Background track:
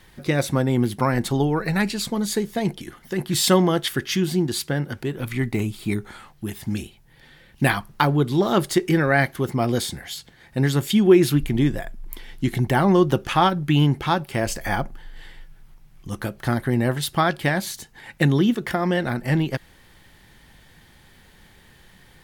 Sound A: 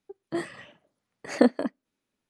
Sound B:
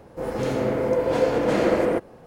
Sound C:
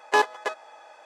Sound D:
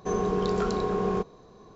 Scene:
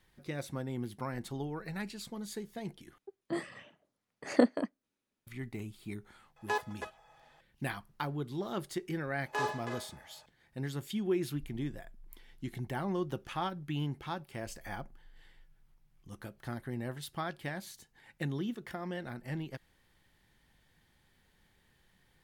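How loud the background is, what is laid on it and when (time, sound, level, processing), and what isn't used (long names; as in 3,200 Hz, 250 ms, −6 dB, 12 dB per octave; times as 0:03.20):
background track −17.5 dB
0:02.98: overwrite with A −5 dB
0:06.36: mix in C −12 dB + notch comb filter 300 Hz
0:09.21: mix in C −15.5 dB + four-comb reverb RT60 0.48 s, combs from 27 ms, DRR −2 dB
not used: B, D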